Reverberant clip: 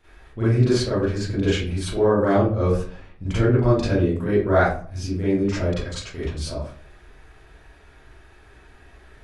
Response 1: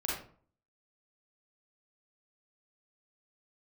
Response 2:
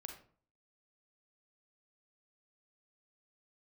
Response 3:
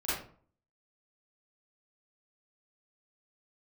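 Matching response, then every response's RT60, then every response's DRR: 3; 0.50, 0.50, 0.50 seconds; −5.5, 3.5, −12.5 decibels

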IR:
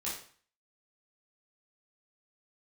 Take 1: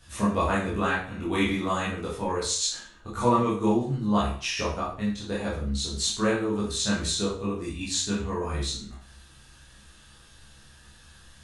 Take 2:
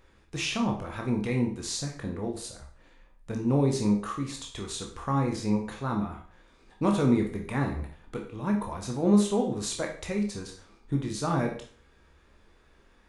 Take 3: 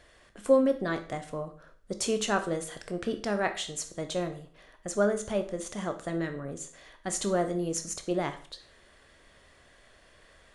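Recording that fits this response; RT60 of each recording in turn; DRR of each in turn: 1; 0.45, 0.45, 0.45 seconds; −7.5, 1.0, 7.0 decibels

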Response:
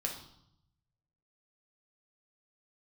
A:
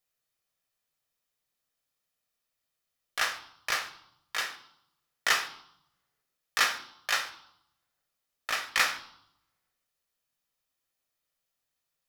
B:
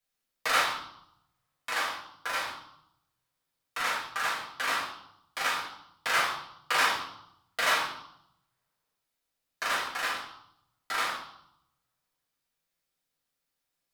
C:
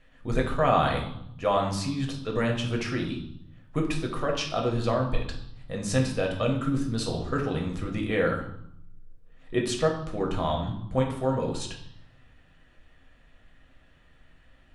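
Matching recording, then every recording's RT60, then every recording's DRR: C; 0.75, 0.75, 0.75 seconds; 7.0, −6.5, 0.0 decibels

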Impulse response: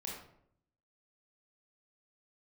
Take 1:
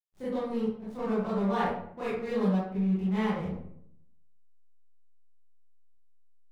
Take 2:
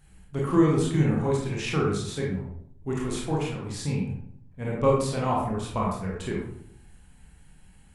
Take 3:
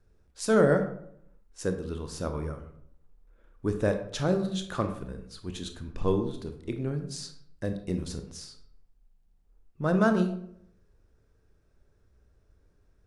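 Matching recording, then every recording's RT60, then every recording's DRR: 2; 0.70, 0.70, 0.70 seconds; −12.0, −3.5, 6.0 decibels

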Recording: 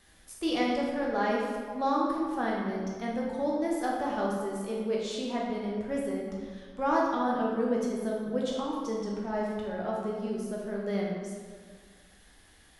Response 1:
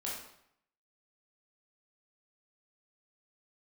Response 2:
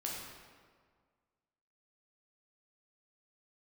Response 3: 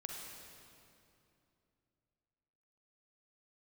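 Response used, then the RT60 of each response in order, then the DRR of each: 2; 0.70, 1.8, 2.7 seconds; −5.5, −3.5, −0.5 decibels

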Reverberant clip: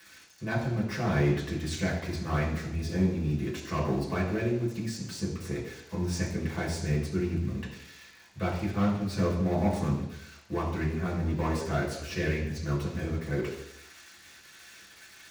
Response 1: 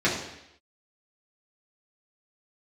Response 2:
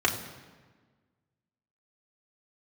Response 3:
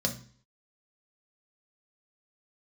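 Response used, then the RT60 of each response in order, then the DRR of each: 1; 0.80, 1.4, 0.45 seconds; −7.5, −1.5, 1.0 decibels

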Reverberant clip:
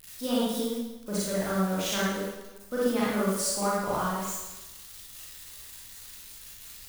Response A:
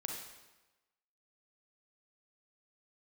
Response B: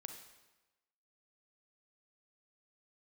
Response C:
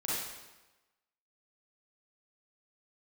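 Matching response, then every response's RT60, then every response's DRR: C; 1.1, 1.1, 1.1 seconds; 0.5, 5.0, −8.0 decibels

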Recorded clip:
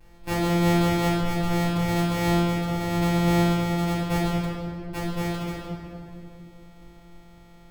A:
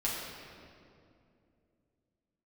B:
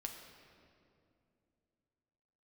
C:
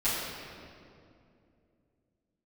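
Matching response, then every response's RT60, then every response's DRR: C; 2.6, 2.6, 2.6 seconds; −7.0, 2.0, −14.5 decibels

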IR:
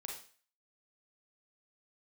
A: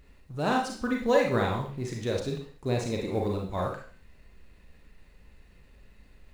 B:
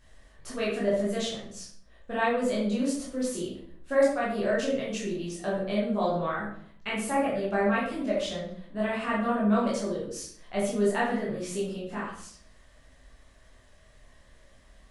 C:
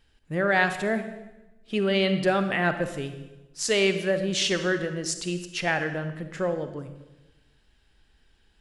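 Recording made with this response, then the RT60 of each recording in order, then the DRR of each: A; 0.45, 0.60, 1.0 seconds; −0.5, −7.5, 9.0 decibels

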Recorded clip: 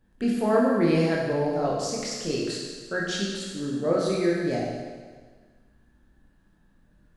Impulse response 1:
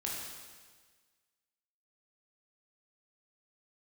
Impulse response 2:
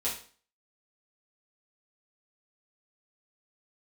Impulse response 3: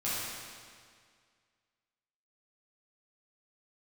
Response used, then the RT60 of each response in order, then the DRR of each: 1; 1.5, 0.45, 2.0 seconds; −4.0, −8.0, −10.5 decibels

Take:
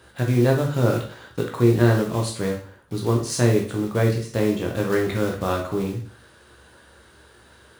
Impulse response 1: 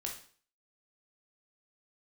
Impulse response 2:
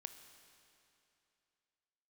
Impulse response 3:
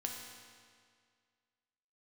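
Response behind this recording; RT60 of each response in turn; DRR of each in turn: 1; 0.45, 2.8, 2.0 seconds; 0.0, 8.0, 0.5 decibels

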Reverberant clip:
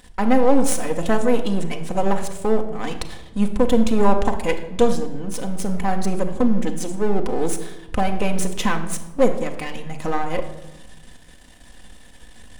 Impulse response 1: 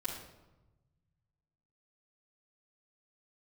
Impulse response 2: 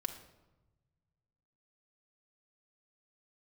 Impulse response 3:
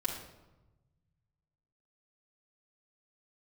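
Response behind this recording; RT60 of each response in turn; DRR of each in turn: 2; 1.1, 1.1, 1.1 seconds; −8.5, 3.5, −4.5 decibels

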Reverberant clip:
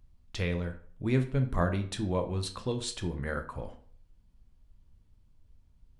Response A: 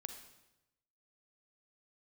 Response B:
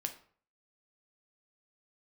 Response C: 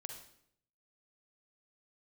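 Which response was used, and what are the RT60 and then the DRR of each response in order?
B; 0.95, 0.50, 0.70 seconds; 6.5, 5.5, 3.5 decibels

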